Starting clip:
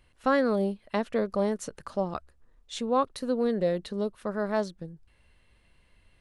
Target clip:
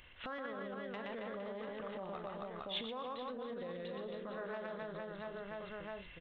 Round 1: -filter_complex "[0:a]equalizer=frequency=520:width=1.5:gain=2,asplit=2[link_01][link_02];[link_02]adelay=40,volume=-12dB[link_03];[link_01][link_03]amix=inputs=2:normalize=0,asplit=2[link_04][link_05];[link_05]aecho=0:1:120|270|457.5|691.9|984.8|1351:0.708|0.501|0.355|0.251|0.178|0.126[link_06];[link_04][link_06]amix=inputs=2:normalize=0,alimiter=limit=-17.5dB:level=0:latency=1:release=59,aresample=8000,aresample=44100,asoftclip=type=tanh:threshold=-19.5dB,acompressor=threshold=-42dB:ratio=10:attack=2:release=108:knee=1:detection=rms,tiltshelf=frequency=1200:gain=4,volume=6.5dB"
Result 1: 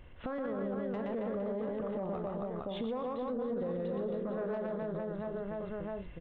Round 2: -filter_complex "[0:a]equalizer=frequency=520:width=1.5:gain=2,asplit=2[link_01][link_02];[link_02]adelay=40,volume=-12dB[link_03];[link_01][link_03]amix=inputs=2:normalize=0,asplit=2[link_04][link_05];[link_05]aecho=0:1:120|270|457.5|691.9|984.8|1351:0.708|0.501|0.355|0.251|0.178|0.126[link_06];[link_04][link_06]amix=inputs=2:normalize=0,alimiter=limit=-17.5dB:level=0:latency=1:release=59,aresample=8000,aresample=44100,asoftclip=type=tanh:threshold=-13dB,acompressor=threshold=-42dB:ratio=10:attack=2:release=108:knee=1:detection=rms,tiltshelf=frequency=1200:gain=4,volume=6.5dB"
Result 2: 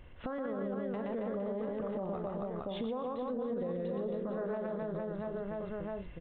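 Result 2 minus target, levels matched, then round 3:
1,000 Hz band −4.0 dB
-filter_complex "[0:a]equalizer=frequency=520:width=1.5:gain=2,asplit=2[link_01][link_02];[link_02]adelay=40,volume=-12dB[link_03];[link_01][link_03]amix=inputs=2:normalize=0,asplit=2[link_04][link_05];[link_05]aecho=0:1:120|270|457.5|691.9|984.8|1351:0.708|0.501|0.355|0.251|0.178|0.126[link_06];[link_04][link_06]amix=inputs=2:normalize=0,alimiter=limit=-17.5dB:level=0:latency=1:release=59,aresample=8000,aresample=44100,asoftclip=type=tanh:threshold=-13dB,acompressor=threshold=-42dB:ratio=10:attack=2:release=108:knee=1:detection=rms,tiltshelf=frequency=1200:gain=-7,volume=6.5dB"

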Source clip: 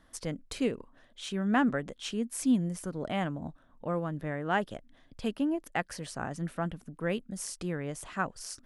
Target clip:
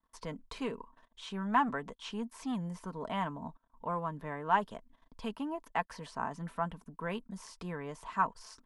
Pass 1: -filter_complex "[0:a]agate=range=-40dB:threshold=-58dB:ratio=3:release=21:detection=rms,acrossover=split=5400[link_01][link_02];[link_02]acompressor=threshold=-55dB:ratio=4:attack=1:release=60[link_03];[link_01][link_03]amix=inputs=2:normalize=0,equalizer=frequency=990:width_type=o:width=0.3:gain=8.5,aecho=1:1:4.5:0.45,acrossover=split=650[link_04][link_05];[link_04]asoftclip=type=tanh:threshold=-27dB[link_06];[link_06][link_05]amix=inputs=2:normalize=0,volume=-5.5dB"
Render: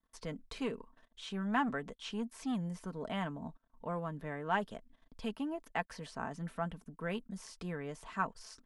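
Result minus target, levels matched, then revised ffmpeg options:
1,000 Hz band −3.0 dB
-filter_complex "[0:a]agate=range=-40dB:threshold=-58dB:ratio=3:release=21:detection=rms,acrossover=split=5400[link_01][link_02];[link_02]acompressor=threshold=-55dB:ratio=4:attack=1:release=60[link_03];[link_01][link_03]amix=inputs=2:normalize=0,equalizer=frequency=990:width_type=o:width=0.3:gain=20,aecho=1:1:4.5:0.45,acrossover=split=650[link_04][link_05];[link_04]asoftclip=type=tanh:threshold=-27dB[link_06];[link_06][link_05]amix=inputs=2:normalize=0,volume=-5.5dB"

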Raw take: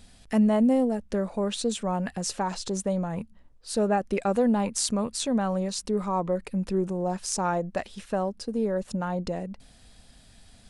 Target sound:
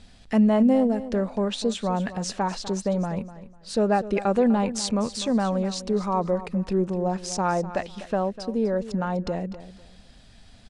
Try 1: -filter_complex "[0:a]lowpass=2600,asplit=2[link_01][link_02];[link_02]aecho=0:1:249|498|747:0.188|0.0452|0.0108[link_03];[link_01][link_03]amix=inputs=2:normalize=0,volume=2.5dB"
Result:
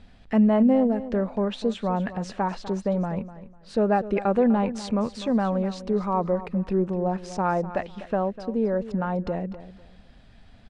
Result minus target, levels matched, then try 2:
8,000 Hz band −13.0 dB
-filter_complex "[0:a]lowpass=5900,asplit=2[link_01][link_02];[link_02]aecho=0:1:249|498|747:0.188|0.0452|0.0108[link_03];[link_01][link_03]amix=inputs=2:normalize=0,volume=2.5dB"

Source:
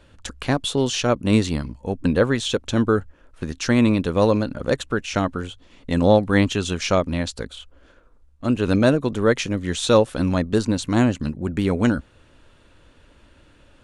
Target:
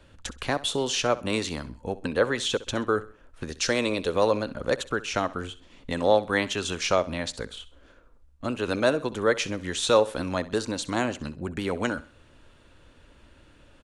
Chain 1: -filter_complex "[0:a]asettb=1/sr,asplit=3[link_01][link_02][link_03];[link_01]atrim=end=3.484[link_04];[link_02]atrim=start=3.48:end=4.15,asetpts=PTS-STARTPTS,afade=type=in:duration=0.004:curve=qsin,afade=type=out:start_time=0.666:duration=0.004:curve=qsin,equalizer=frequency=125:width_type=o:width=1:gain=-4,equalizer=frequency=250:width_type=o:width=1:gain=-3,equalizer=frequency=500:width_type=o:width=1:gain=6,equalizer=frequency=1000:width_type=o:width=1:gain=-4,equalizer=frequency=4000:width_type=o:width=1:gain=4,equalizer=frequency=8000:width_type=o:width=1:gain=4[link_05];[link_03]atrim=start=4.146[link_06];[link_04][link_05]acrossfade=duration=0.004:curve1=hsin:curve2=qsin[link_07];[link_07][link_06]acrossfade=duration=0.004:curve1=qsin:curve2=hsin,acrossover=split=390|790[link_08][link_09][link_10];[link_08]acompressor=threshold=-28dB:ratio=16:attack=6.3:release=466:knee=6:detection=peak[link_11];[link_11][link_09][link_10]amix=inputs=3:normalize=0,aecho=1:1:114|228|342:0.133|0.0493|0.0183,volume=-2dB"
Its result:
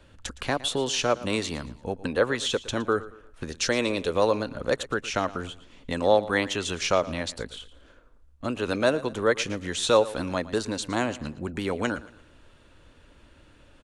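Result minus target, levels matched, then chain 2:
echo 49 ms late
-filter_complex "[0:a]asettb=1/sr,asplit=3[link_01][link_02][link_03];[link_01]atrim=end=3.484[link_04];[link_02]atrim=start=3.48:end=4.15,asetpts=PTS-STARTPTS,afade=type=in:duration=0.004:curve=qsin,afade=type=out:start_time=0.666:duration=0.004:curve=qsin,equalizer=frequency=125:width_type=o:width=1:gain=-4,equalizer=frequency=250:width_type=o:width=1:gain=-3,equalizer=frequency=500:width_type=o:width=1:gain=6,equalizer=frequency=1000:width_type=o:width=1:gain=-4,equalizer=frequency=4000:width_type=o:width=1:gain=4,equalizer=frequency=8000:width_type=o:width=1:gain=4[link_05];[link_03]atrim=start=4.146[link_06];[link_04][link_05]acrossfade=duration=0.004:curve1=hsin:curve2=qsin[link_07];[link_07][link_06]acrossfade=duration=0.004:curve1=qsin:curve2=hsin,acrossover=split=390|790[link_08][link_09][link_10];[link_08]acompressor=threshold=-28dB:ratio=16:attack=6.3:release=466:knee=6:detection=peak[link_11];[link_11][link_09][link_10]amix=inputs=3:normalize=0,aecho=1:1:65|130|195:0.133|0.0493|0.0183,volume=-2dB"

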